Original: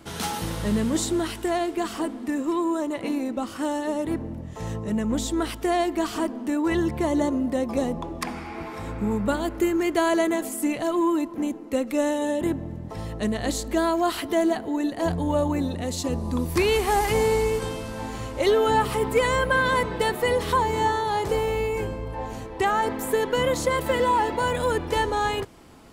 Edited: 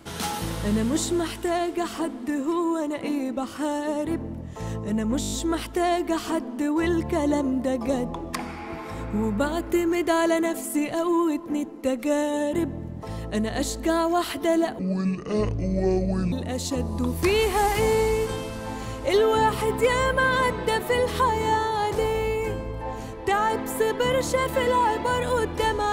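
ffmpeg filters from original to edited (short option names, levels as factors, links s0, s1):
-filter_complex "[0:a]asplit=9[s0][s1][s2][s3][s4][s5][s6][s7][s8];[s0]atrim=end=5.222[s9];[s1]atrim=start=5.198:end=5.222[s10];[s2]atrim=start=5.198:end=5.222[s11];[s3]atrim=start=5.198:end=5.222[s12];[s4]atrim=start=5.198:end=5.222[s13];[s5]atrim=start=5.198:end=5.222[s14];[s6]atrim=start=5.198:end=14.674[s15];[s7]atrim=start=14.67:end=15.65,asetpts=PTS-STARTPTS,asetrate=28224,aresample=44100,atrim=end_sample=67528,asetpts=PTS-STARTPTS[s16];[s8]atrim=start=15.646[s17];[s9][s10]acrossfade=d=0.004:c1=hsin:c2=hsin[s18];[s18][s11]acrossfade=d=0.004:c1=hsin:c2=hsin[s19];[s19][s12]acrossfade=d=0.004:c1=hsin:c2=hsin[s20];[s20][s13]acrossfade=d=0.004:c1=hsin:c2=hsin[s21];[s21][s14]acrossfade=d=0.004:c1=hsin:c2=hsin[s22];[s22][s15]acrossfade=d=0.004:c1=hsin:c2=hsin[s23];[s23][s16]acrossfade=d=0.004:c1=hsin:c2=hsin[s24];[s24][s17]acrossfade=d=0.004:c1=hsin:c2=hsin"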